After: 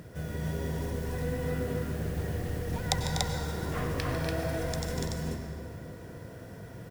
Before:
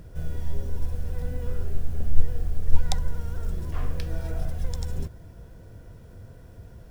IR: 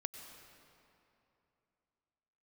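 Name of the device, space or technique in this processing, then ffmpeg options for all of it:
stadium PA: -filter_complex "[0:a]highpass=130,equalizer=f=1900:t=o:w=0.31:g=5.5,aecho=1:1:148.7|244.9|288.6:0.282|0.355|0.794[s0];[1:a]atrim=start_sample=2205[s1];[s0][s1]afir=irnorm=-1:irlink=0,volume=2"

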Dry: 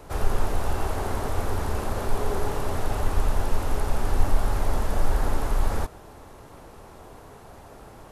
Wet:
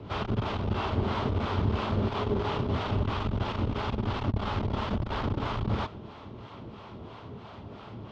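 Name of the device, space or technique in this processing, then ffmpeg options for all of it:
guitar amplifier with harmonic tremolo: -filter_complex "[0:a]acrossover=split=550[s0][s1];[s0]aeval=exprs='val(0)*(1-0.7/2+0.7/2*cos(2*PI*3*n/s))':c=same[s2];[s1]aeval=exprs='val(0)*(1-0.7/2-0.7/2*cos(2*PI*3*n/s))':c=same[s3];[s2][s3]amix=inputs=2:normalize=0,asoftclip=type=tanh:threshold=0.0841,highpass=80,equalizer=f=110:t=q:w=4:g=8,equalizer=f=210:t=q:w=4:g=7,equalizer=f=510:t=q:w=4:g=-5,equalizer=f=760:t=q:w=4:g=-6,equalizer=f=1700:t=q:w=4:g=-7,equalizer=f=3200:t=q:w=4:g=6,lowpass=f=4400:w=0.5412,lowpass=f=4400:w=1.3066,equalizer=f=8900:w=0.87:g=-5.5,volume=2.11"

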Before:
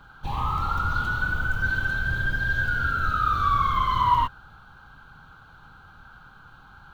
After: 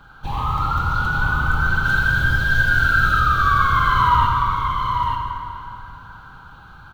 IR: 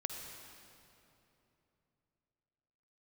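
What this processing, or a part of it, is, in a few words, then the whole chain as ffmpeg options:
stairwell: -filter_complex "[0:a]asettb=1/sr,asplit=3[s0][s1][s2];[s0]atrim=end=1.854[s3];[s1]atrim=start=1.85:end=3.2,asetpts=PTS-STARTPTS,afade=t=in:d=0.004:c=qsin,afade=t=out:st=1.346:d=0.004:c=qsin,highshelf=f=2400:g=8[s4];[s2]atrim=start=3.196[s5];[s3][s4]acrossfade=d=0.004:c1=hsin:c2=qsin[s6];[s6][s5]acrossfade=d=0.004:c1=qsin:c2=hsin,aecho=1:1:886:0.562[s7];[1:a]atrim=start_sample=2205[s8];[s7][s8]afir=irnorm=-1:irlink=0,volume=1.68"

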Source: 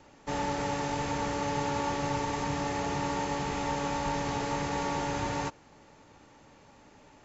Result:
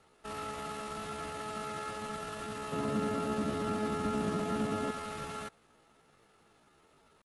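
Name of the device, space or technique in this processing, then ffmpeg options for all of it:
chipmunk voice: -filter_complex "[0:a]asetrate=66075,aresample=44100,atempo=0.66742,asettb=1/sr,asplit=3[s0][s1][s2];[s0]atrim=end=2.724[s3];[s1]atrim=start=2.72:end=4.91,asetpts=PTS-STARTPTS,afade=t=in:d=0.004:c=qsin,afade=t=out:st=2.186:d=0.004:c=qsin,equalizer=f=220:t=o:w=2.5:g=14[s4];[s2]atrim=start=4.906[s5];[s3][s4]acrossfade=d=0.004:c1=hsin:c2=qsin[s6];[s6][s5]acrossfade=d=0.004:c1=qsin:c2=hsin,volume=0.376"

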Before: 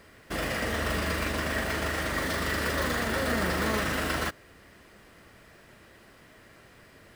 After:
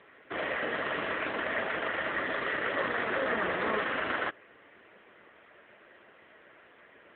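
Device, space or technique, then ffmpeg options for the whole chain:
telephone: -filter_complex "[0:a]asplit=3[s0][s1][s2];[s0]afade=t=out:st=2.16:d=0.02[s3];[s1]highpass=f=49:p=1,afade=t=in:st=2.16:d=0.02,afade=t=out:st=2.63:d=0.02[s4];[s2]afade=t=in:st=2.63:d=0.02[s5];[s3][s4][s5]amix=inputs=3:normalize=0,highpass=330,lowpass=3400,volume=1.19" -ar 8000 -c:a libopencore_amrnb -b:a 7950

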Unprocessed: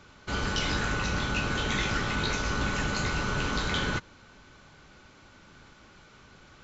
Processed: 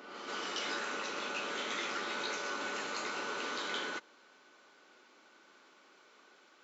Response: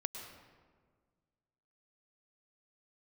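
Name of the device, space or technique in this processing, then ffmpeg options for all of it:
ghost voice: -filter_complex "[0:a]areverse[s0];[1:a]atrim=start_sample=2205[s1];[s0][s1]afir=irnorm=-1:irlink=0,areverse,highpass=f=300:w=0.5412,highpass=f=300:w=1.3066,volume=0.501"

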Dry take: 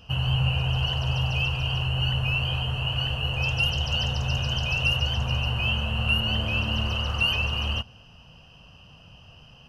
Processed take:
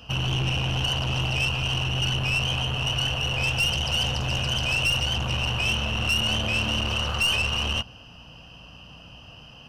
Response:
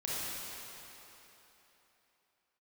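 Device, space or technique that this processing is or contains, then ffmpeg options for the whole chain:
valve amplifier with mains hum: -af "aeval=exprs='(tanh(17.8*val(0)+0.35)-tanh(0.35))/17.8':c=same,aeval=exprs='val(0)+0.00178*(sin(2*PI*60*n/s)+sin(2*PI*2*60*n/s)/2+sin(2*PI*3*60*n/s)/3+sin(2*PI*4*60*n/s)/4+sin(2*PI*5*60*n/s)/5)':c=same,lowshelf=f=140:g=-7,volume=2.11"

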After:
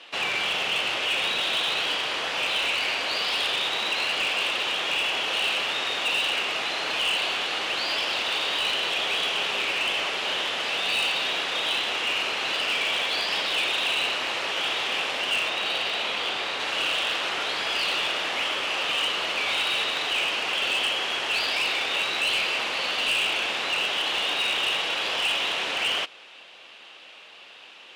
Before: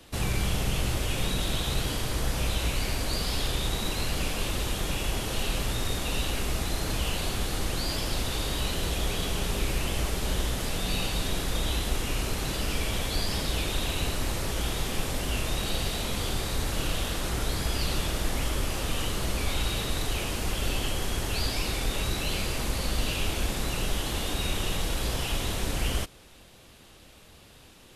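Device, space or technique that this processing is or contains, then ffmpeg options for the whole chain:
megaphone: -filter_complex "[0:a]asettb=1/sr,asplit=3[s0][s1][s2];[s0]atrim=end=15.484[s3];[s1]atrim=start=15.48:end=16.6,asetpts=PTS-STARTPTS,afade=t=in:d=0.004:c=qsin,afade=t=out:st=1.116:d=0.004:c=qsin,highshelf=f=3600:g=-4[s4];[s2]atrim=start=16.596[s5];[s3][s4]acrossfade=d=0.004:c1=hsin:c2=qsin[s6];[s6][s5]acrossfade=d=0.004:c1=qsin:c2=hsin,highpass=660,lowpass=3700,equalizer=f=2800:t=o:w=0.57:g=8,asoftclip=type=hard:threshold=0.0422,volume=2.37"

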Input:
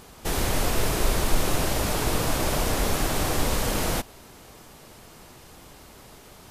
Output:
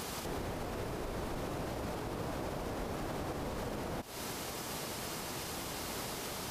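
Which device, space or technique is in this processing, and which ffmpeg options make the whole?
broadcast voice chain: -af "highpass=f=110:p=1,deesser=1,acompressor=threshold=0.00794:ratio=4,equalizer=f=5000:t=o:w=0.77:g=2,alimiter=level_in=5.96:limit=0.0631:level=0:latency=1:release=149,volume=0.168,volume=2.99"

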